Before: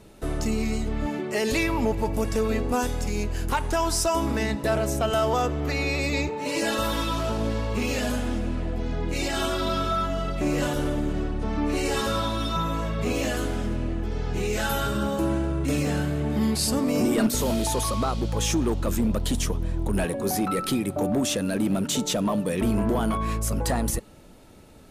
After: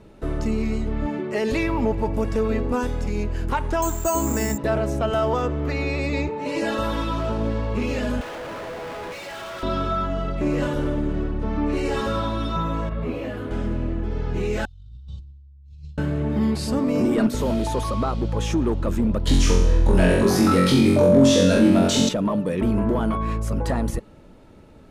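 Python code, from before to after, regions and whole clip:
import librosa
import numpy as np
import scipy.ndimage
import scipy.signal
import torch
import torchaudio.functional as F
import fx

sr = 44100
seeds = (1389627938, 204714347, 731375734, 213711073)

y = fx.chain(x, sr, fx.resample_bad(factor=6, down='filtered', up='zero_stuff'),
    fx.high_shelf(hz=5800.0, db=-5.0), at=(3.82, 4.58))
y = fx.chain(y, sr, fx.highpass(hz=530.0, slope=24),
    fx.schmitt(flips_db=-46.5), at=(8.21, 9.63))
y = fx.chain(y, sr, fx.peak_eq(hz=6700.0, db=-13.0, octaves=1.1),
    fx.detune_double(cents=37), at=(12.89, 13.51))
y = fx.chain(y, sr, fx.ellip_bandstop(low_hz=100.0, high_hz=4100.0, order=3, stop_db=40),
    fx.over_compress(threshold_db=-39.0, ratio=-0.5),
    fx.spacing_loss(db_at_10k=30), at=(14.65, 15.98))
y = fx.chain(y, sr, fx.peak_eq(hz=5100.0, db=7.0, octaves=1.3),
    fx.room_flutter(wall_m=3.8, rt60_s=0.72),
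    fx.env_flatten(amount_pct=50), at=(19.27, 22.09))
y = fx.lowpass(y, sr, hz=1800.0, slope=6)
y = fx.notch(y, sr, hz=730.0, q=14.0)
y = F.gain(torch.from_numpy(y), 2.5).numpy()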